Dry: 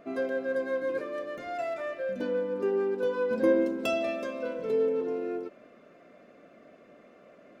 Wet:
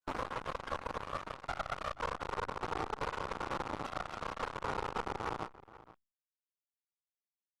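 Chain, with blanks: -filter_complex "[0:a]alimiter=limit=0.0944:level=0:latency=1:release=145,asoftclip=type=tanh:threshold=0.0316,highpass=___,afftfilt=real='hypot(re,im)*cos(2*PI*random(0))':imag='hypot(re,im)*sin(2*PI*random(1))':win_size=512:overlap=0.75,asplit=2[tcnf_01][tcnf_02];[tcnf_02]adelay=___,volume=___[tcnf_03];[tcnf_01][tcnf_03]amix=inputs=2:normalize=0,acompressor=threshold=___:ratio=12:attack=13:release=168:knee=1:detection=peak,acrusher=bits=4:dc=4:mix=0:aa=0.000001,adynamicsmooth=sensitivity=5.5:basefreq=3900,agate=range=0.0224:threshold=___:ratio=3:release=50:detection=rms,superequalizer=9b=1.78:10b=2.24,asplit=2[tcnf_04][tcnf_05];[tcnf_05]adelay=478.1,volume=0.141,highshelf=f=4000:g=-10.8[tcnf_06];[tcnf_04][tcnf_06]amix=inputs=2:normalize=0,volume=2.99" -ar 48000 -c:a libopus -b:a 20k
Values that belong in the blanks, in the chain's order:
240, 36, 0.501, 0.00794, 0.00708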